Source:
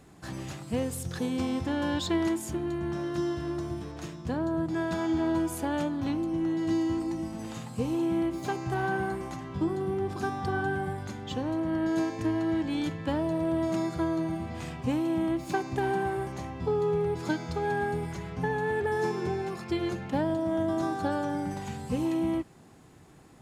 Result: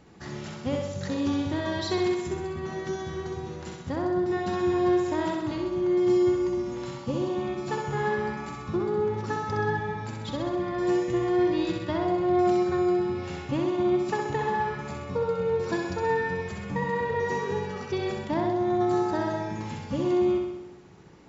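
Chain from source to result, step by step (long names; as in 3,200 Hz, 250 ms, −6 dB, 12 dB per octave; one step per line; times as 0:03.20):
speed change +10%
linear-phase brick-wall low-pass 7,400 Hz
flutter between parallel walls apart 11 metres, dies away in 0.92 s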